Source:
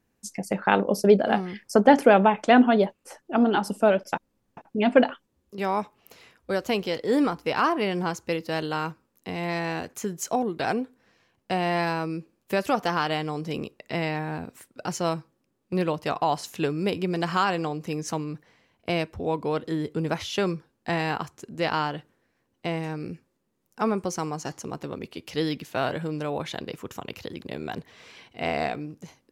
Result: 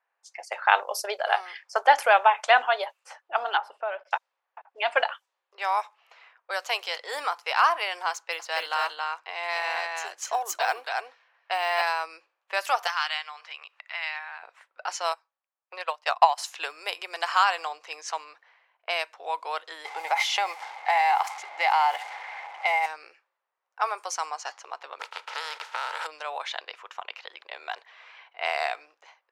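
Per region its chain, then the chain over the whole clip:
0:03.57–0:04.11: downward compressor 2.5 to 1, threshold −22 dBFS + high-frequency loss of the air 490 metres
0:08.12–0:11.82: single-tap delay 274 ms −3.5 dB + bad sample-rate conversion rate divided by 2×, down none, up hold
0:12.87–0:14.43: high-pass filter 1,400 Hz + upward compression, threshold −36 dBFS
0:15.12–0:16.38: Chebyshev high-pass filter 550 Hz + transient designer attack +10 dB, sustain −5 dB + expander for the loud parts, over −29 dBFS
0:19.85–0:22.86: converter with a step at zero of −38.5 dBFS + hollow resonant body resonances 810/2,100 Hz, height 17 dB, ringing for 25 ms + downward compressor 4 to 1, threshold −20 dBFS
0:24.99–0:26.05: compressing power law on the bin magnitudes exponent 0.37 + hollow resonant body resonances 230/460/890/1,300 Hz, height 15 dB, ringing for 25 ms + downward compressor 10 to 1, threshold −27 dBFS
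whole clip: low-pass that shuts in the quiet parts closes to 1,800 Hz, open at −22 dBFS; inverse Chebyshev high-pass filter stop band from 220 Hz, stop band 60 dB; level +3.5 dB

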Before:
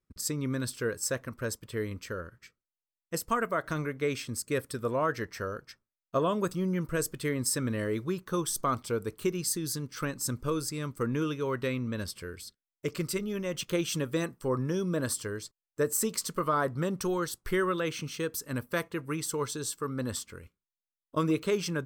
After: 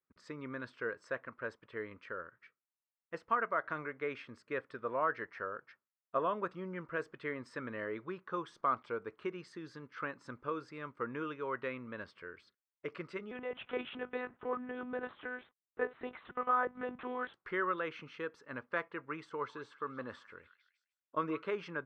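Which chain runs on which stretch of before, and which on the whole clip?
0:13.31–0:17.34: mu-law and A-law mismatch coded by mu + one-pitch LPC vocoder at 8 kHz 250 Hz
0:19.29–0:21.50: de-essing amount 65% + echo through a band-pass that steps 153 ms, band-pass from 1,500 Hz, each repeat 0.7 octaves, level −11 dB
whole clip: Bessel low-pass filter 1,200 Hz, order 4; first difference; level +16.5 dB

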